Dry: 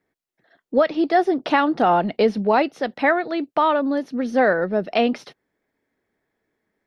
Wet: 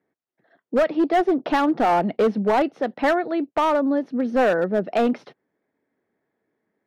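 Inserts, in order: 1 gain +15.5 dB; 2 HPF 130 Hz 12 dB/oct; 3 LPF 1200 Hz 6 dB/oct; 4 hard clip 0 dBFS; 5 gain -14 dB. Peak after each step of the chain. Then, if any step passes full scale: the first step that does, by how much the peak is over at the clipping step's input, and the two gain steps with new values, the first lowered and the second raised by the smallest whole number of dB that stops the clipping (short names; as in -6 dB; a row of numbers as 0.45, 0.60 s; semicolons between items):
+9.5, +10.0, +8.0, 0.0, -14.0 dBFS; step 1, 8.0 dB; step 1 +7.5 dB, step 5 -6 dB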